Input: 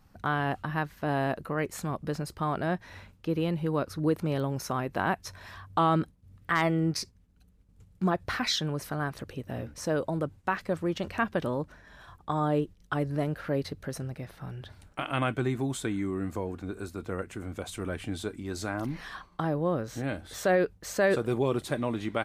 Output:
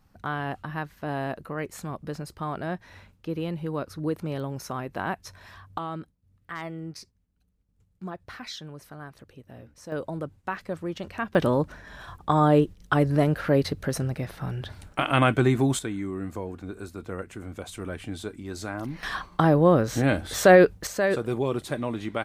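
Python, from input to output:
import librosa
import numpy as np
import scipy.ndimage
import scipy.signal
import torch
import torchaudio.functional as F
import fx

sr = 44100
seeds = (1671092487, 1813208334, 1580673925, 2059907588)

y = fx.gain(x, sr, db=fx.steps((0.0, -2.0), (5.78, -10.0), (9.92, -2.5), (11.35, 8.0), (15.79, -0.5), (19.03, 10.0), (20.87, 0.5)))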